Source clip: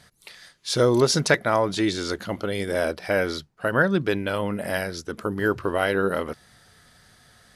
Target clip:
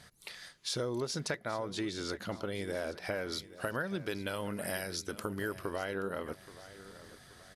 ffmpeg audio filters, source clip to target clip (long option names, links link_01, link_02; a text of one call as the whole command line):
ffmpeg -i in.wav -filter_complex "[0:a]asettb=1/sr,asplit=3[link_01][link_02][link_03];[link_01]atrim=end=3.324[link_04];[link_02]atrim=start=3.32:end=5.76,asetpts=PTS-STARTPTS,afade=type=in:duration=0.004:curve=qsin,afade=type=out:start_time=2.436:duration=0.004:curve=qsin,highshelf=frequency=4200:gain=11.5[link_05];[link_03]atrim=start=5.756[link_06];[link_04][link_05]acrossfade=duration=0.004:curve1=hsin:curve2=qsin[link_07];[link_07][link_06]acrossfade=duration=0.004:curve1=qsin:curve2=hsin,acompressor=threshold=-33dB:ratio=4,aecho=1:1:827|1654|2481|3308:0.15|0.0628|0.0264|0.0111,volume=-2dB" out.wav